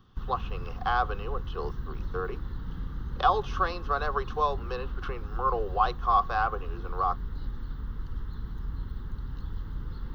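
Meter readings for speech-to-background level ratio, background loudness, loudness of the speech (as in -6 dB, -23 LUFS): 9.0 dB, -39.0 LUFS, -30.0 LUFS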